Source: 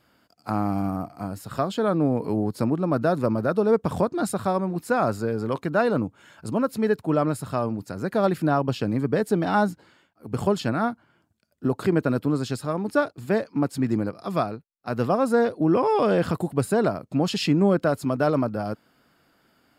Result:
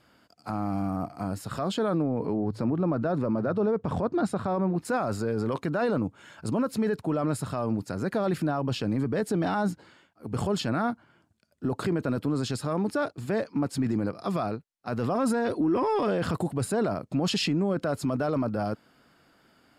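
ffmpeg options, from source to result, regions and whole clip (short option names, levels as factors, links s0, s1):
-filter_complex "[0:a]asettb=1/sr,asplit=3[s0][s1][s2];[s0]atrim=end=2.024[s3];[s1]atrim=start=2.02:end=4.85,asetpts=PTS-STARTPTS,afade=t=in:d=0.004:c=qsin,afade=t=out:st=2.826:d=0.004:c=qsin,aemphasis=mode=reproduction:type=75kf,bandreject=f=54.5:t=h:w=4,bandreject=f=109:t=h:w=4[s4];[s2]atrim=start=4.846[s5];[s3][s4]acrossfade=d=0.004:c1=hsin:c2=qsin[s6];[s6][s5]acrossfade=d=0.004:c1=qsin:c2=hsin,asettb=1/sr,asplit=3[s7][s8][s9];[s7]atrim=end=15.154[s10];[s8]atrim=start=15.15:end=16.08,asetpts=PTS-STARTPTS,afade=t=in:d=0.004:c=qsin,afade=t=out:st=0.926:d=0.004:c=qsin,acontrast=76,bandreject=f=630:w=6.6,aecho=1:1:3.1:0.36,atrim=end_sample=41013[s11];[s9]atrim=start=16.076[s12];[s10][s11]acrossfade=d=0.004:c1=hsin:c2=qsin[s13];[s13][s12]acrossfade=d=0.004:c1=qsin:c2=hsin,lowpass=11000,alimiter=limit=0.0944:level=0:latency=1:release=14,volume=1.19"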